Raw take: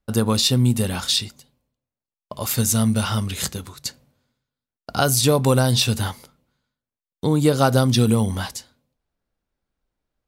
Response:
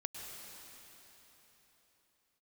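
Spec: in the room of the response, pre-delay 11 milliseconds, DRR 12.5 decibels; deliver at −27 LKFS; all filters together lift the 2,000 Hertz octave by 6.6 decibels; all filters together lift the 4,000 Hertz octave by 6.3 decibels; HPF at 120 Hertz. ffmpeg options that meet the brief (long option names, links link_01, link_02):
-filter_complex "[0:a]highpass=120,equalizer=frequency=2000:width_type=o:gain=9,equalizer=frequency=4000:width_type=o:gain=5,asplit=2[link_01][link_02];[1:a]atrim=start_sample=2205,adelay=11[link_03];[link_02][link_03]afir=irnorm=-1:irlink=0,volume=-12dB[link_04];[link_01][link_04]amix=inputs=2:normalize=0,volume=-9dB"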